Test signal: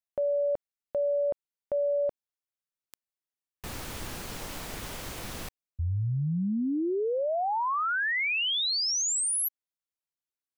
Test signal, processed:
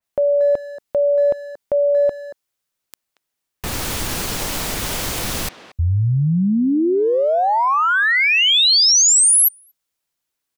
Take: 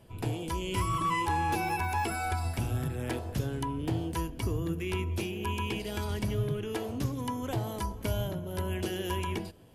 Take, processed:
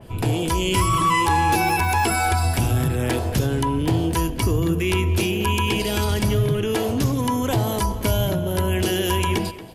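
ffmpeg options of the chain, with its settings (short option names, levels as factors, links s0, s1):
-filter_complex "[0:a]asplit=2[s0][s1];[s1]alimiter=level_in=1.78:limit=0.0631:level=0:latency=1,volume=0.562,volume=1.41[s2];[s0][s2]amix=inputs=2:normalize=0,asplit=2[s3][s4];[s4]adelay=230,highpass=300,lowpass=3400,asoftclip=type=hard:threshold=0.0668,volume=0.224[s5];[s3][s5]amix=inputs=2:normalize=0,adynamicequalizer=threshold=0.0112:dfrequency=3000:dqfactor=0.7:tfrequency=3000:tqfactor=0.7:attack=5:release=100:ratio=0.375:range=2:mode=boostabove:tftype=highshelf,volume=2"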